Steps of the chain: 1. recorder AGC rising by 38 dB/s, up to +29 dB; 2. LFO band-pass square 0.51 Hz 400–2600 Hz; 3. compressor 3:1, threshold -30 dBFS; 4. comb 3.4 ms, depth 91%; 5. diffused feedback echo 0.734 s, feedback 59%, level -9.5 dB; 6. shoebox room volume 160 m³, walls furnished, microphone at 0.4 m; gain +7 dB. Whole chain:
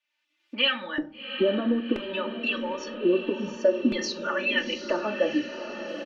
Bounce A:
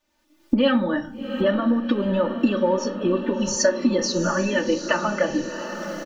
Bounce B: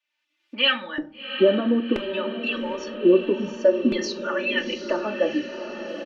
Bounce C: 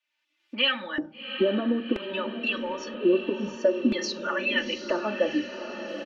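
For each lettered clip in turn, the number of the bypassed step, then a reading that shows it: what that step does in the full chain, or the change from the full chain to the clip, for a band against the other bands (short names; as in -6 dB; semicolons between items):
2, 4 kHz band -8.5 dB; 3, mean gain reduction 1.5 dB; 6, echo-to-direct -6.0 dB to -7.5 dB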